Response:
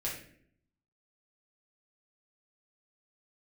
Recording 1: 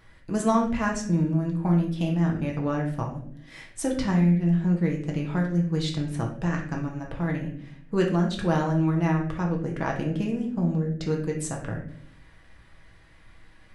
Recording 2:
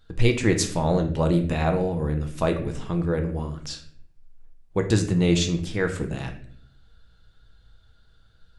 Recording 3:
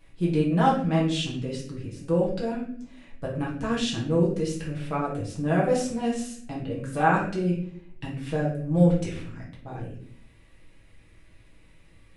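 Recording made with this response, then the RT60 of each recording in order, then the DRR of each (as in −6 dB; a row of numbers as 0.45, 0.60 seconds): 3; 0.60, 0.60, 0.60 seconds; −0.5, 4.0, −5.5 decibels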